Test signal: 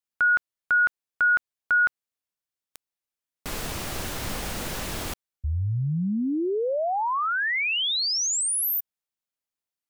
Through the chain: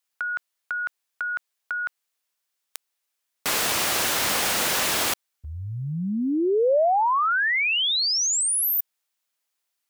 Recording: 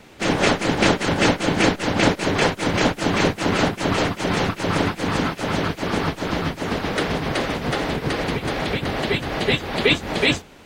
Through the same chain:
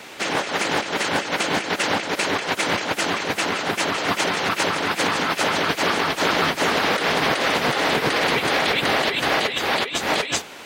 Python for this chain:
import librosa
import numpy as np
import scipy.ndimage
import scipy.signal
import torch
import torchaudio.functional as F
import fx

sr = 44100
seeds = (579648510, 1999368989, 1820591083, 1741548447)

y = fx.highpass(x, sr, hz=800.0, slope=6)
y = fx.over_compress(y, sr, threshold_db=-30.0, ratio=-1.0)
y = y * librosa.db_to_amplitude(7.5)